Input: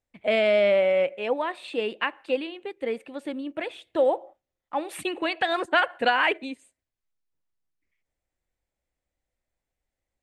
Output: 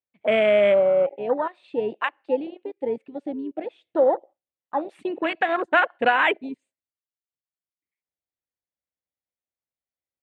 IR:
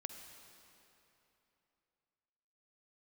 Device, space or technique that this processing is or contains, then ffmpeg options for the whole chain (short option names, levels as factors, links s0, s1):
over-cleaned archive recording: -af "highpass=100,lowpass=5300,afwtdn=0.0398,volume=1.41"